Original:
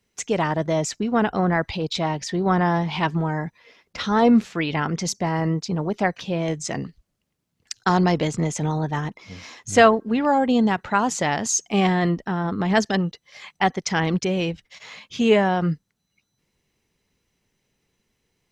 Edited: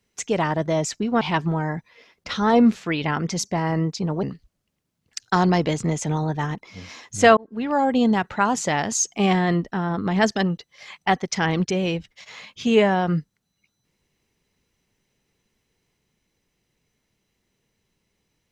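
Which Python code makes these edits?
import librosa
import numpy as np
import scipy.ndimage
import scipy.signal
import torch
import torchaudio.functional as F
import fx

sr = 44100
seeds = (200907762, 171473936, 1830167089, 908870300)

y = fx.edit(x, sr, fx.cut(start_s=1.21, length_s=1.69),
    fx.cut(start_s=5.92, length_s=0.85),
    fx.fade_in_span(start_s=9.91, length_s=0.65, curve='qsin'), tone=tone)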